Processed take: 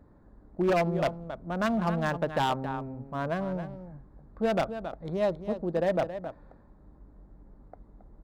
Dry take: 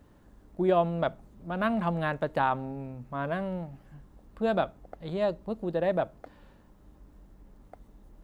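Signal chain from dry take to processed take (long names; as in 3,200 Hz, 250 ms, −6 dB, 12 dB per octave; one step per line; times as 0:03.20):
adaptive Wiener filter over 15 samples
single-tap delay 272 ms −11 dB
wave folding −20 dBFS
level +1 dB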